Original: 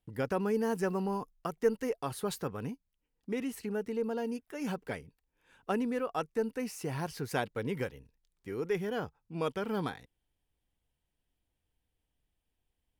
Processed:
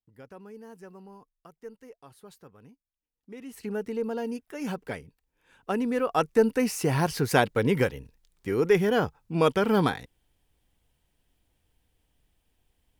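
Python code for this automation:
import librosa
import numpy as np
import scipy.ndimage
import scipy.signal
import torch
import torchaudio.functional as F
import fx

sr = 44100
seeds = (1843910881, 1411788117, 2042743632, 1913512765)

y = fx.gain(x, sr, db=fx.line((2.73, -15.0), (3.42, -8.0), (3.67, 3.0), (5.72, 3.0), (6.29, 11.0)))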